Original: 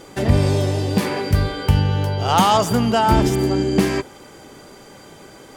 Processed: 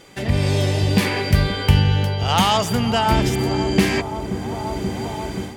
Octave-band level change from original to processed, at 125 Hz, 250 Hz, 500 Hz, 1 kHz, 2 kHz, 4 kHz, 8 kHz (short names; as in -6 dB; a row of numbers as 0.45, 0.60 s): +0.5, -1.0, -2.0, -2.0, +3.5, +3.5, +0.5 dB